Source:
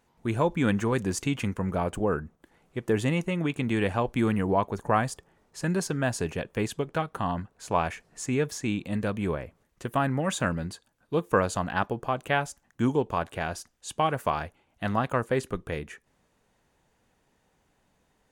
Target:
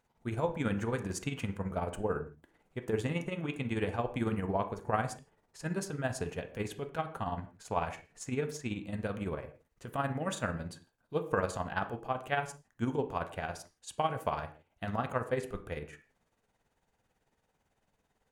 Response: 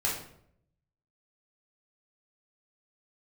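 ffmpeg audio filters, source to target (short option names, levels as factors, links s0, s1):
-filter_complex "[0:a]tremolo=f=18:d=0.65,asplit=2[s0][s1];[s1]bass=f=250:g=-6,treble=f=4000:g=1[s2];[1:a]atrim=start_sample=2205,afade=t=out:st=0.22:d=0.01,atrim=end_sample=10143,highshelf=f=4300:g=-11.5[s3];[s2][s3]afir=irnorm=-1:irlink=0,volume=0.266[s4];[s0][s4]amix=inputs=2:normalize=0,volume=0.501"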